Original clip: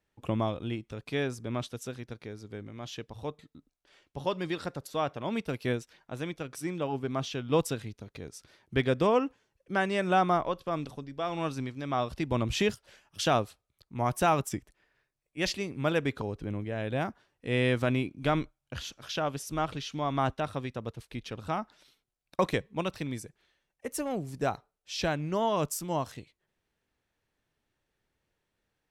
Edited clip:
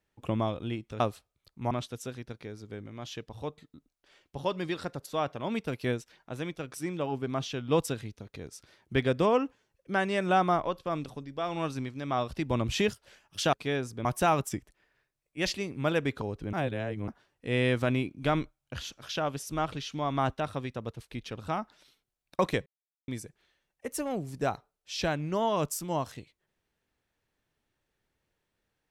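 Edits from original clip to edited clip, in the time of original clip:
1.00–1.52 s: swap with 13.34–14.05 s
16.53–17.08 s: reverse
22.66–23.08 s: mute

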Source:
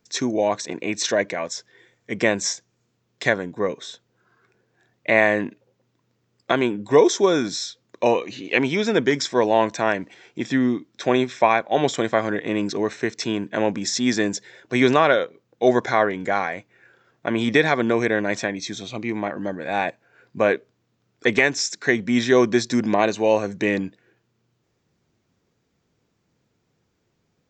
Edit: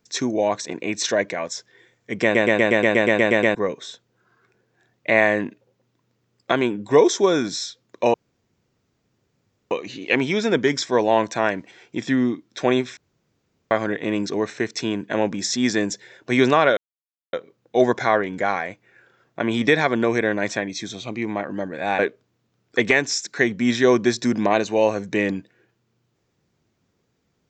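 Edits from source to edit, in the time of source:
2.23 s: stutter in place 0.12 s, 11 plays
8.14 s: insert room tone 1.57 s
11.40–12.14 s: room tone
15.20 s: insert silence 0.56 s
19.86–20.47 s: delete

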